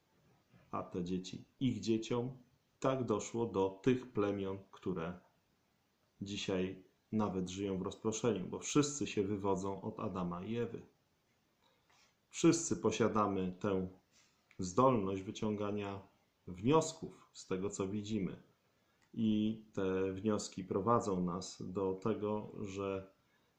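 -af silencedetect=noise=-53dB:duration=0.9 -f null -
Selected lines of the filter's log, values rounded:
silence_start: 5.18
silence_end: 6.21 | silence_duration: 1.02
silence_start: 10.85
silence_end: 12.33 | silence_duration: 1.48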